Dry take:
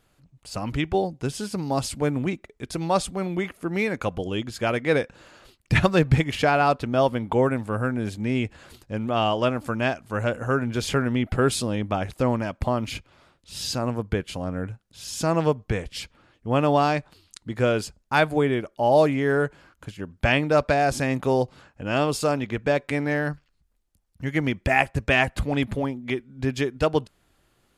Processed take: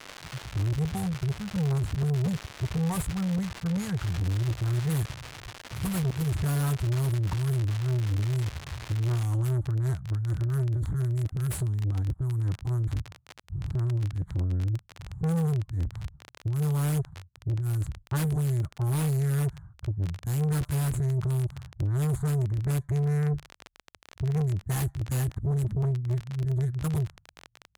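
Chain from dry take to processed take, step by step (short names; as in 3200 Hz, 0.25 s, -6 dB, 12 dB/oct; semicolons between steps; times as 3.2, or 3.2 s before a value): median filter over 15 samples; low-pass opened by the level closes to 450 Hz, open at -17 dBFS; gate with hold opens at -48 dBFS; inverse Chebyshev band-stop 240–5400 Hz, stop band 40 dB; bell 360 Hz -6 dB 0.78 oct; negative-ratio compressor -39 dBFS, ratio -1; crackle 270/s -48 dBFS, from 9.25 s 29/s; overdrive pedal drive 46 dB, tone 3300 Hz, clips at -10.5 dBFS; gain -7 dB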